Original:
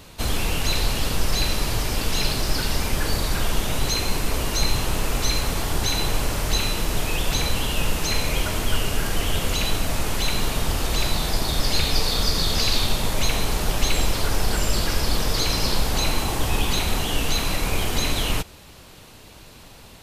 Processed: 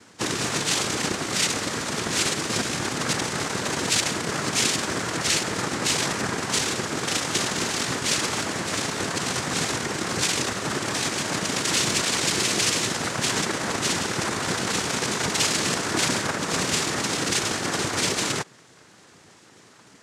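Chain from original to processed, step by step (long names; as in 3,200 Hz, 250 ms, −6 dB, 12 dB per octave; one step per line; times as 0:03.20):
phases set to zero 257 Hz
in parallel at −3.5 dB: bit reduction 4 bits
on the sum: cochlear-implant simulation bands 3
level −1.5 dB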